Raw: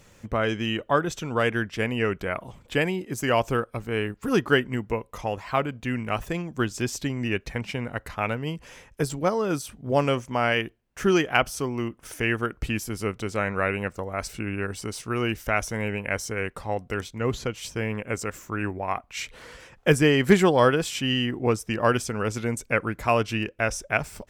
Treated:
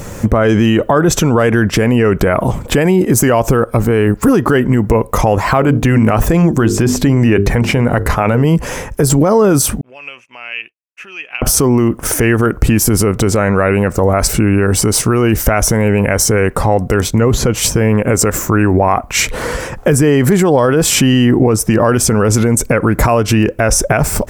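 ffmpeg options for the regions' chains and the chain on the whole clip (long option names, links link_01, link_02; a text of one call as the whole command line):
ffmpeg -i in.wav -filter_complex "[0:a]asettb=1/sr,asplit=3[link_01][link_02][link_03];[link_01]atrim=end=5.604[link_04];[link_02]atrim=start=5.6:end=8.45,asetpts=PTS-STARTPTS,afade=type=in:duration=0.004:curve=qsin,afade=type=out:start_time=2.846:duration=0.004:curve=qsin,acrossover=split=3400[link_05][link_06];[link_06]acompressor=threshold=-43dB:ratio=4:attack=1:release=60[link_07];[link_05][link_07]amix=inputs=2:normalize=0,bandreject=frequency=50:width_type=h:width=6,bandreject=frequency=100:width_type=h:width=6,bandreject=frequency=150:width_type=h:width=6,bandreject=frequency=200:width_type=h:width=6,bandreject=frequency=250:width_type=h:width=6,bandreject=frequency=300:width_type=h:width=6,bandreject=frequency=350:width_type=h:width=6,bandreject=frequency=400:width_type=h:width=6,bandreject=frequency=450:width_type=h:width=6[link_08];[link_03]atrim=start=8.446[link_09];[link_04][link_08]acrossfade=duration=0.004:curve1=hsin:curve2=qsin[link_10];[link_10][link_09]acrossfade=duration=0.004:curve1=qsin:curve2=hsin,asettb=1/sr,asplit=3[link_11][link_12][link_13];[link_11]atrim=end=9.814[link_14];[link_12]atrim=start=9.81:end=11.42,asetpts=PTS-STARTPTS,afade=type=in:duration=0.004:curve=qsin,afade=type=out:start_time=1.606:duration=0.004:curve=qsin,agate=range=-33dB:threshold=-39dB:ratio=3:release=100:detection=peak,acompressor=threshold=-23dB:ratio=10:attack=3.2:release=140:knee=1:detection=peak,bandpass=frequency=2600:width_type=q:width=15[link_15];[link_13]atrim=start=11.416[link_16];[link_14][link_15]acrossfade=duration=0.004:curve1=hsin:curve2=qsin[link_17];[link_17][link_16]acrossfade=duration=0.004:curve1=qsin:curve2=hsin,equalizer=frequency=3200:width_type=o:width=1.9:gain=-11,acompressor=threshold=-26dB:ratio=6,alimiter=level_in=29.5dB:limit=-1dB:release=50:level=0:latency=1,volume=-1dB" out.wav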